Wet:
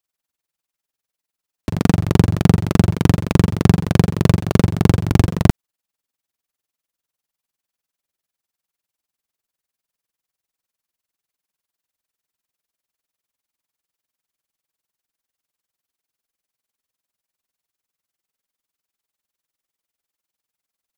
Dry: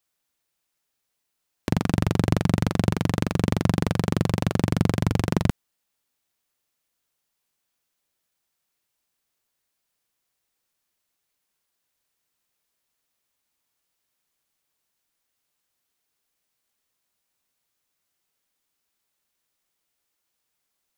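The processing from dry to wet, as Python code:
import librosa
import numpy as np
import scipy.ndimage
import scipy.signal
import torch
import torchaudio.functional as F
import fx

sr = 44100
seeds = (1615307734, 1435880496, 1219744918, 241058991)

y = fx.leveller(x, sr, passes=3)
y = y * (1.0 - 0.83 / 2.0 + 0.83 / 2.0 * np.cos(2.0 * np.pi * 20.0 * (np.arange(len(y)) / sr)))
y = y * librosa.db_to_amplitude(4.5)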